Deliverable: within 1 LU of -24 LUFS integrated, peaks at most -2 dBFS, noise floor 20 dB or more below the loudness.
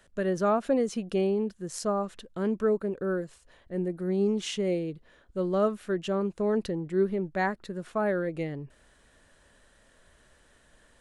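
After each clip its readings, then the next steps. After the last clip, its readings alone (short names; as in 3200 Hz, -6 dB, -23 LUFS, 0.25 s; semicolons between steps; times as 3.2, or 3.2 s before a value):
loudness -29.5 LUFS; peak -14.5 dBFS; loudness target -24.0 LUFS
-> gain +5.5 dB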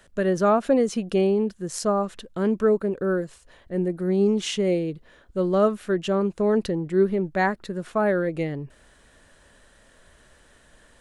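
loudness -24.0 LUFS; peak -9.0 dBFS; noise floor -56 dBFS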